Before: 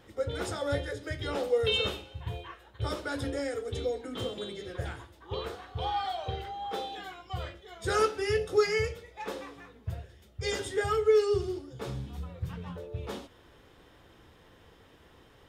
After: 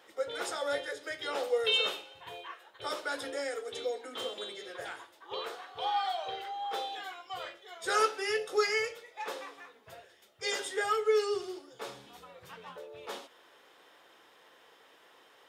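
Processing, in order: high-pass 560 Hz 12 dB/octave; trim +1.5 dB

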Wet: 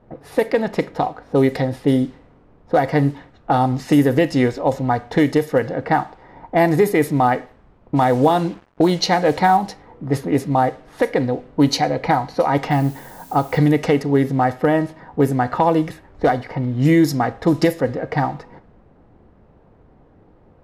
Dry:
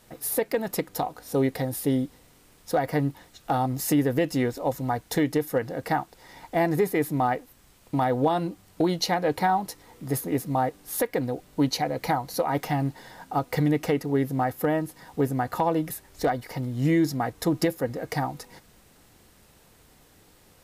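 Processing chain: Schroeder reverb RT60 0.41 s, combs from 28 ms, DRR 15 dB; 7.96–9.57 s: word length cut 8-bit, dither none; level-controlled noise filter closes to 810 Hz, open at -18.5 dBFS; 12.70–13.57 s: added noise blue -54 dBFS; trim +8 dB

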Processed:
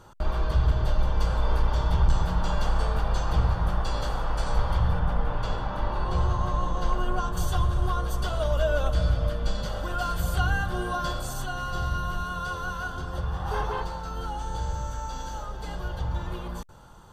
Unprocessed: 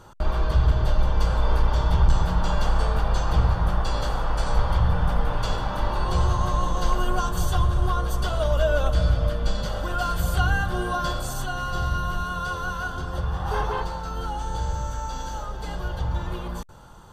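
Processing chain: 4.99–7.37 s: treble shelf 4.7 kHz -11 dB; trim -3 dB

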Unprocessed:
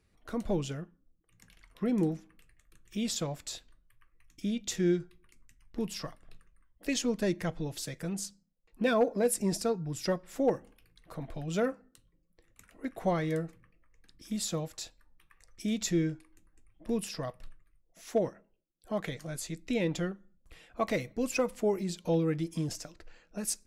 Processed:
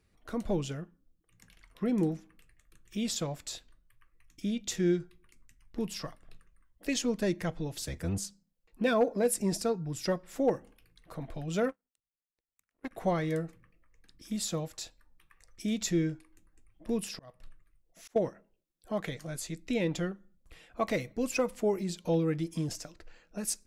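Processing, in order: 7.77–8.18 s: octave divider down 1 oct, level +1 dB; 11.69–12.91 s: power-law waveshaper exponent 2; 16.97–18.16 s: slow attack 391 ms

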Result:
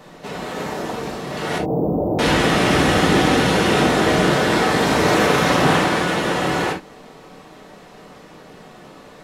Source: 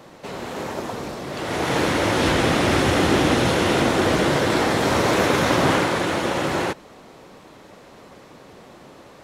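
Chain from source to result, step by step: 1.58–2.19 s: inverse Chebyshev band-stop 1.6–9.5 kHz, stop band 50 dB; reverberation, pre-delay 4 ms, DRR -0.5 dB

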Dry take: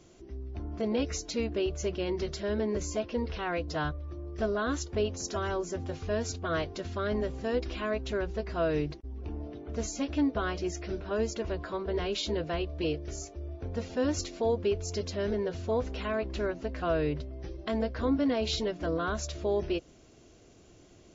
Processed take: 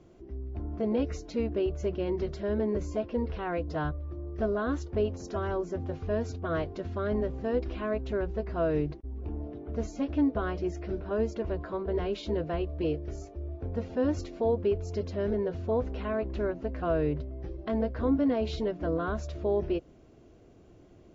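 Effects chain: low-pass 1 kHz 6 dB/octave; trim +2 dB

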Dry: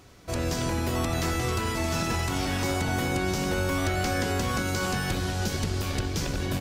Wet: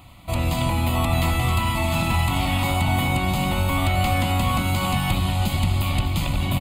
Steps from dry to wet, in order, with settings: static phaser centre 1.6 kHz, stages 6; delay 250 ms -14.5 dB; trim +8.5 dB

